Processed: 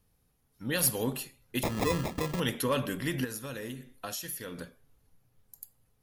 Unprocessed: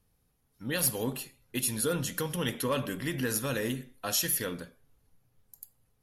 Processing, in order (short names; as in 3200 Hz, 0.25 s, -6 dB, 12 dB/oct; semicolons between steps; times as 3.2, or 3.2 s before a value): 1.63–2.4 sample-rate reducer 1500 Hz, jitter 0%; 3.24–4.58 compressor 6:1, threshold -37 dBFS, peak gain reduction 12 dB; gain +1 dB